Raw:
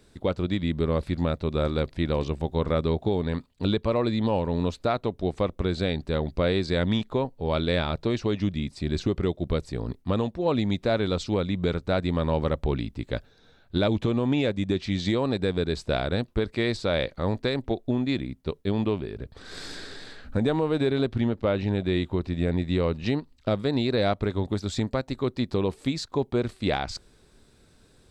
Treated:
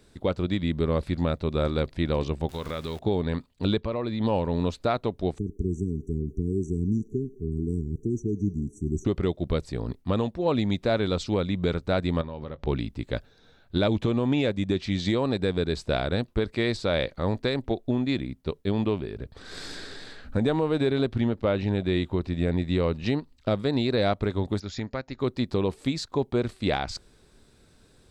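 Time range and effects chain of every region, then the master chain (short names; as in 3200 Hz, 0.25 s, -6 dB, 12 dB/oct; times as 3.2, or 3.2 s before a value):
2.49–2.99 zero-crossing step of -40.5 dBFS + tilt shelf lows -6 dB, about 1200 Hz + compressor 3:1, threshold -29 dBFS
3.8–4.2 LPF 5000 Hz + compressor 2:1, threshold -28 dBFS
5.38–9.05 brick-wall FIR band-stop 440–5700 Hz + bell 910 Hz -13.5 dB 1 oct + band-limited delay 0.104 s, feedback 63%, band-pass 1500 Hz, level -3.5 dB
12.21–12.67 LPF 5300 Hz 24 dB/oct + compressor 16:1, threshold -31 dBFS + doubler 21 ms -14 dB
24.6–25.2 rippled Chebyshev low-pass 7000 Hz, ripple 6 dB + notch 1100 Hz, Q 21
whole clip: dry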